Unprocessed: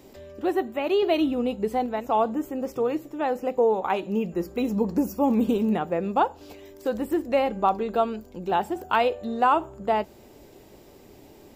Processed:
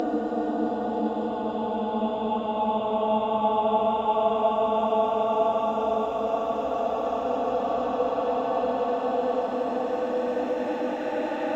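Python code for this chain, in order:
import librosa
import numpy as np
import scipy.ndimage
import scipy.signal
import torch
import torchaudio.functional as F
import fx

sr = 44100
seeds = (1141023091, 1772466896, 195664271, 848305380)

y = fx.block_reorder(x, sr, ms=97.0, group=7)
y = fx.peak_eq(y, sr, hz=1000.0, db=-6.5, octaves=0.53)
y = fx.paulstretch(y, sr, seeds[0], factor=30.0, window_s=0.25, from_s=2.43)
y = fx.high_shelf_res(y, sr, hz=7600.0, db=-13.5, q=1.5)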